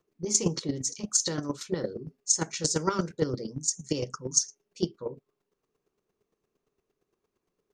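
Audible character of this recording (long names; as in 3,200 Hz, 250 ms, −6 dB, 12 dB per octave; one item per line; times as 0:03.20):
chopped level 8.7 Hz, depth 65%, duty 15%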